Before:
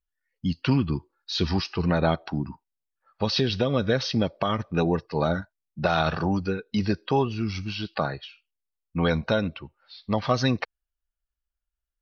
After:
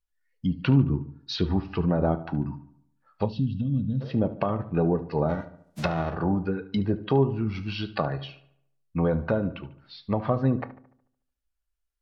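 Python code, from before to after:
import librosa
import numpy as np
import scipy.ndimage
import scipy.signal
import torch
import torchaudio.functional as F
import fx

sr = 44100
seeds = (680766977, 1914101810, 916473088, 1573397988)

y = fx.envelope_flatten(x, sr, power=0.3, at=(5.28, 6.13), fade=0.02)
y = fx.env_lowpass_down(y, sr, base_hz=800.0, full_db=-21.0)
y = fx.echo_filtered(y, sr, ms=73, feedback_pct=50, hz=3300.0, wet_db=-15.0)
y = fx.spec_box(y, sr, start_s=3.26, length_s=0.75, low_hz=290.0, high_hz=2600.0, gain_db=-27)
y = fx.room_shoebox(y, sr, seeds[0], volume_m3=130.0, walls='furnished', distance_m=0.34)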